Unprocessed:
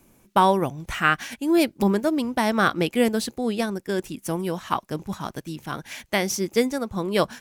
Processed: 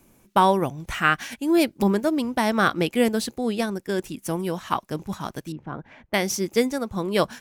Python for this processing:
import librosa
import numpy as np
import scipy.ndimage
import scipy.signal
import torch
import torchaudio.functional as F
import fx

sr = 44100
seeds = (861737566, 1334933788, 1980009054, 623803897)

y = fx.bessel_lowpass(x, sr, hz=940.0, order=2, at=(5.52, 6.14))